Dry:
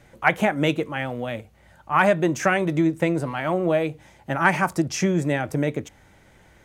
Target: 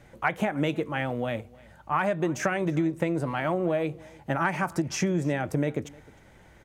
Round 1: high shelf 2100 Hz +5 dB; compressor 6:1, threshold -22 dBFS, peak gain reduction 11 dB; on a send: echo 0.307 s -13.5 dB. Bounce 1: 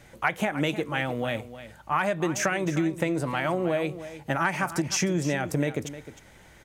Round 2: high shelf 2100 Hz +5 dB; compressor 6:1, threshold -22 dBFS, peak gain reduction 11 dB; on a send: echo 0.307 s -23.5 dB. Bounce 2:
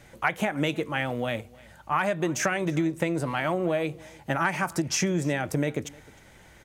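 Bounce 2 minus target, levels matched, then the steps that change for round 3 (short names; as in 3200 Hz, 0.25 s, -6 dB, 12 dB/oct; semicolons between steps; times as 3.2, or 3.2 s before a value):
4000 Hz band +4.5 dB
change: high shelf 2100 Hz -3.5 dB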